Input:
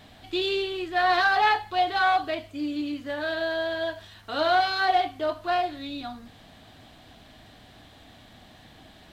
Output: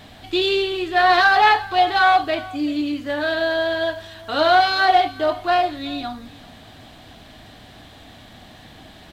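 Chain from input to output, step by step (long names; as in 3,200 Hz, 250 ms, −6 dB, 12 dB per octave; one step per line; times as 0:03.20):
single-tap delay 382 ms −20.5 dB
level +7 dB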